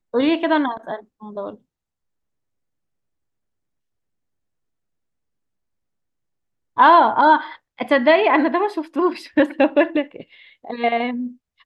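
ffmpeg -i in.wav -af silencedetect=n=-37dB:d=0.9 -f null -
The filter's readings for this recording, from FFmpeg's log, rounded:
silence_start: 1.55
silence_end: 6.77 | silence_duration: 5.22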